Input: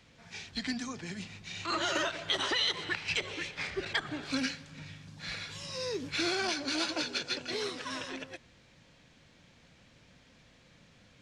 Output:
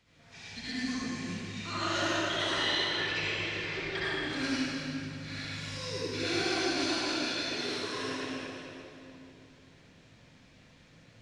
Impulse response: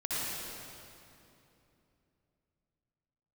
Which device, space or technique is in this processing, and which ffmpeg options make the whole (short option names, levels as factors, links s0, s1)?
stairwell: -filter_complex "[0:a]asettb=1/sr,asplit=3[s0][s1][s2];[s0]atrim=end=2.524[s3];[s1]atrim=start=2.52:end=3.97,asetpts=PTS-STARTPTS,afade=t=in:d=0.004:c=qsin,afade=t=out:st=1.446:d=0.004:c=qsin,lowpass=5400[s4];[s2]atrim=start=3.966[s5];[s3][s4]acrossfade=d=0.004:c1=hsin:c2=qsin[s6];[s6][s5]acrossfade=d=0.004:c1=qsin:c2=hsin[s7];[1:a]atrim=start_sample=2205[s8];[s7][s8]afir=irnorm=-1:irlink=0,volume=0.562"